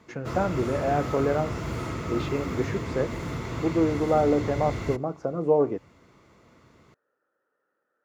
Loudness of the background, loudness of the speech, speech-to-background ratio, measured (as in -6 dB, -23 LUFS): -32.5 LUFS, -27.0 LUFS, 5.5 dB